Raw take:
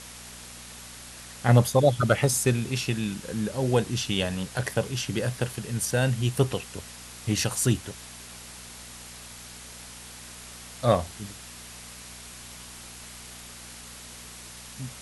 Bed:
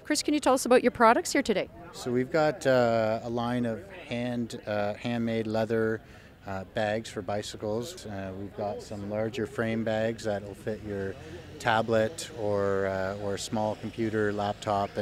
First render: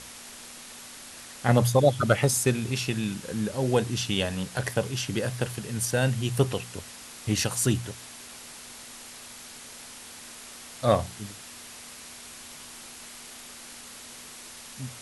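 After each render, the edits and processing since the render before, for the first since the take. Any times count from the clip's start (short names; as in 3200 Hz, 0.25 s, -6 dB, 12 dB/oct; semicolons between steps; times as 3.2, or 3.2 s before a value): de-hum 60 Hz, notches 3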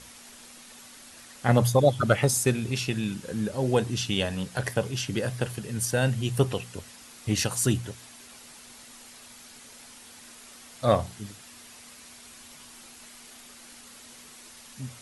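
denoiser 6 dB, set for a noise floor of -45 dBFS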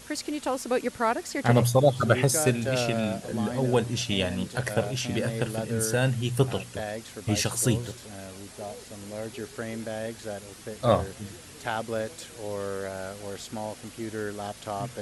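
add bed -5.5 dB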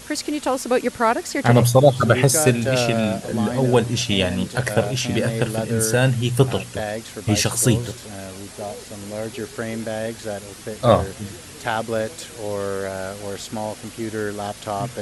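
gain +7 dB; limiter -1 dBFS, peak gain reduction 3 dB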